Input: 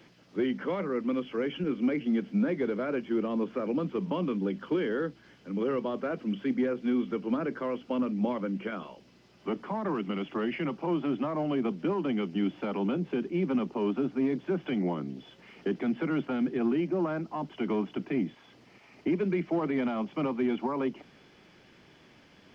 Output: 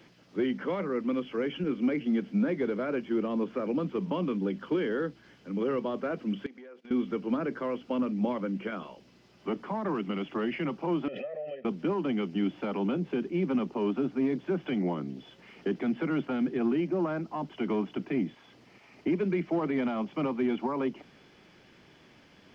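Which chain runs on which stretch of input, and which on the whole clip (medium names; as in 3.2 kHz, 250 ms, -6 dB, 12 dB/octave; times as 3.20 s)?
6.46–6.91 s: high-pass 460 Hz + gate -48 dBFS, range -17 dB + compression, threshold -46 dBFS
11.08–11.65 s: vowel filter e + comb 1.6 ms, depth 92% + swell ahead of each attack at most 41 dB/s
whole clip: none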